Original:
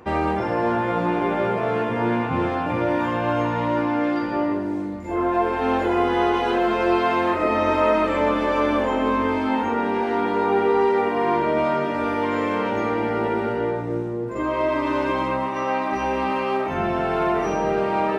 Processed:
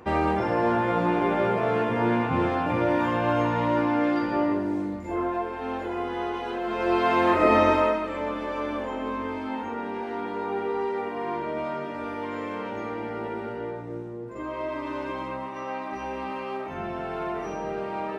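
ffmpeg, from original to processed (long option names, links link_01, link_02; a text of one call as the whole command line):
ffmpeg -i in.wav -af "volume=11dB,afade=type=out:start_time=4.93:duration=0.54:silence=0.375837,afade=type=in:start_time=6.63:duration=0.92:silence=0.237137,afade=type=out:start_time=7.55:duration=0.45:silence=0.251189" out.wav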